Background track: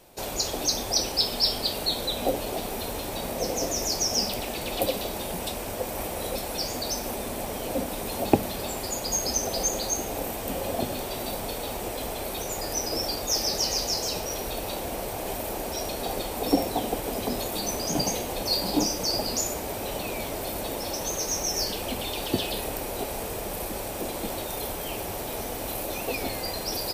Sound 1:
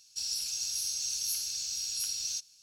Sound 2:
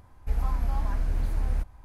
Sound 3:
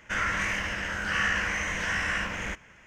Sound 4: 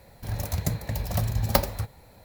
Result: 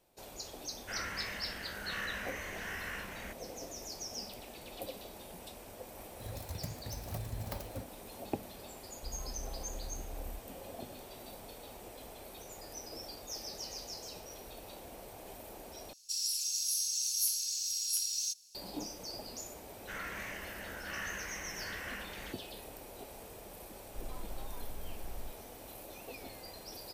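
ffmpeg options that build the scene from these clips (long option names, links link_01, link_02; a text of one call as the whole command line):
ffmpeg -i bed.wav -i cue0.wav -i cue1.wav -i cue2.wav -i cue3.wav -filter_complex "[3:a]asplit=2[link_01][link_02];[2:a]asplit=2[link_03][link_04];[0:a]volume=-17dB[link_05];[4:a]alimiter=limit=-10.5dB:level=0:latency=1:release=42[link_06];[1:a]crystalizer=i=3.5:c=0[link_07];[link_04]afreqshift=-23[link_08];[link_05]asplit=2[link_09][link_10];[link_09]atrim=end=15.934[link_11];[link_07]atrim=end=2.62,asetpts=PTS-STARTPTS,volume=-11dB[link_12];[link_10]atrim=start=18.546[link_13];[link_01]atrim=end=2.86,asetpts=PTS-STARTPTS,volume=-13dB,afade=type=in:duration=0.004:curve=hsin,afade=type=out:start_time=2.856:duration=0.004:curve=hsin,adelay=780[link_14];[link_06]atrim=end=2.24,asetpts=PTS-STARTPTS,volume=-14.5dB,afade=type=in:duration=0.004:curve=hsin,afade=type=out:start_time=2.236:duration=0.004:curve=hsin,adelay=5970[link_15];[link_03]atrim=end=1.84,asetpts=PTS-STARTPTS,volume=-17.5dB,afade=type=in:duration=0.004:curve=hsin,afade=type=out:start_time=1.836:duration=0.004:curve=hsin,adelay=8760[link_16];[link_02]atrim=end=2.86,asetpts=PTS-STARTPTS,volume=-14.5dB,afade=type=in:duration=0.004:curve=hsin,afade=type=out:start_time=2.856:duration=0.004:curve=hsin,adelay=19780[link_17];[link_08]atrim=end=1.84,asetpts=PTS-STARTPTS,volume=-14.5dB,afade=type=in:duration=0.004:curve=hsin,afade=type=out:start_time=1.836:duration=0.004:curve=hsin,adelay=23670[link_18];[link_11][link_12]acrossfade=duration=0.004:curve1=hsin:curve2=hsin[link_19];[link_19][link_13]acrossfade=duration=0.004:curve1=hsin:curve2=hsin[link_20];[link_20][link_14][link_15][link_16][link_17][link_18]amix=inputs=6:normalize=0" out.wav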